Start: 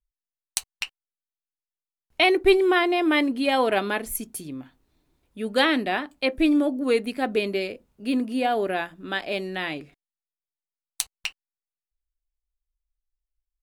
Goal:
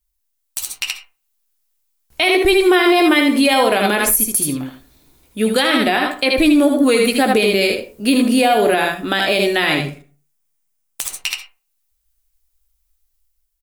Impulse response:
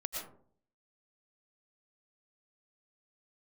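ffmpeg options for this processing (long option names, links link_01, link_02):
-filter_complex "[0:a]asettb=1/sr,asplit=3[link_01][link_02][link_03];[link_01]atrim=end=9.794[link_04];[link_02]atrim=start=9.79:end=11.16,asetpts=PTS-STARTPTS,afade=type=in:duration=0.004:curve=qsin,afade=type=out:start_time=1.366:duration=0.004:curve=qsin,equalizer=frequency=160:width_type=o:width=0.67:gain=11,equalizer=frequency=4000:width_type=o:width=0.67:gain=-6,equalizer=frequency=16000:width_type=o:width=0.67:gain=-5[link_05];[link_03]atrim=start=11.156[link_06];[link_04][link_05]acrossfade=duration=0.004:curve1=hsin:curve2=qsin[link_07];[link_07][link_06]acrossfade=duration=0.004:curve1=qsin:curve2=hsin,dynaudnorm=framelen=220:gausssize=5:maxgain=5dB,aecho=1:1:14|77:0.335|0.531,crystalizer=i=2:c=0,aeval=exprs='(mod(0.708*val(0)+1,2)-1)/0.708':channel_layout=same,asplit=2[link_08][link_09];[1:a]atrim=start_sample=2205,asetrate=79380,aresample=44100[link_10];[link_09][link_10]afir=irnorm=-1:irlink=0,volume=-4.5dB[link_11];[link_08][link_11]amix=inputs=2:normalize=0,acompressor=threshold=-13dB:ratio=6,alimiter=level_in=9.5dB:limit=-1dB:release=50:level=0:latency=1,volume=-4dB"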